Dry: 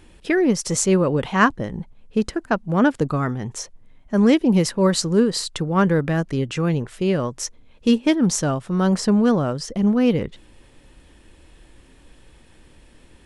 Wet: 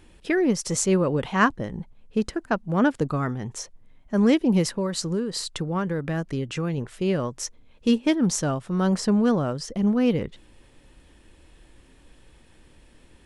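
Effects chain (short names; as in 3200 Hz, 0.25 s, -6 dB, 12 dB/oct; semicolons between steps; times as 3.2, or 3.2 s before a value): 4.71–6.78 compressor 10:1, threshold -19 dBFS, peak gain reduction 8.5 dB; gain -3.5 dB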